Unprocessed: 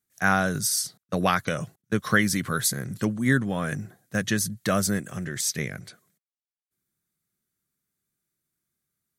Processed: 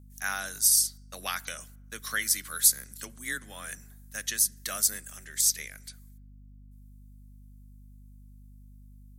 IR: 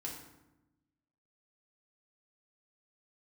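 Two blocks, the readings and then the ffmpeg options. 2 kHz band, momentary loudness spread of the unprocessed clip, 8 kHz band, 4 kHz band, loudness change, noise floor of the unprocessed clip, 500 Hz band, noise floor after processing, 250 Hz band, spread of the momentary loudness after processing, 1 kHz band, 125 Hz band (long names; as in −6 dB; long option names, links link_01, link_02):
−8.0 dB, 9 LU, +4.0 dB, −0.5 dB, −0.5 dB, below −85 dBFS, −18.5 dB, −51 dBFS, −23.5 dB, 20 LU, −12.0 dB, −19.5 dB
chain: -filter_complex "[0:a]afreqshift=17,aderivative,aeval=exprs='val(0)+0.002*(sin(2*PI*50*n/s)+sin(2*PI*2*50*n/s)/2+sin(2*PI*3*50*n/s)/3+sin(2*PI*4*50*n/s)/4+sin(2*PI*5*50*n/s)/5)':channel_layout=same,asplit=2[link_01][link_02];[1:a]atrim=start_sample=2205,lowpass=5700[link_03];[link_02][link_03]afir=irnorm=-1:irlink=0,volume=-17.5dB[link_04];[link_01][link_04]amix=inputs=2:normalize=0,volume=3.5dB"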